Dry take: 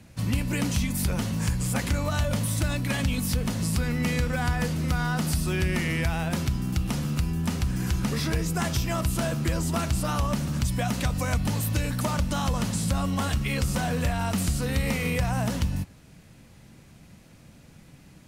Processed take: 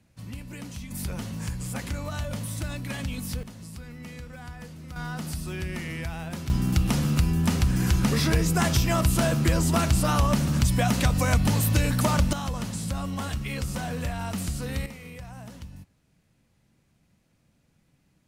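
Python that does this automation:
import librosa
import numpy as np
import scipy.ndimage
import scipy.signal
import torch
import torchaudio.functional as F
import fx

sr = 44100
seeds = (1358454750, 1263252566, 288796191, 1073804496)

y = fx.gain(x, sr, db=fx.steps((0.0, -12.5), (0.91, -6.0), (3.43, -15.0), (4.96, -7.0), (6.5, 4.0), (12.33, -4.5), (14.86, -15.5)))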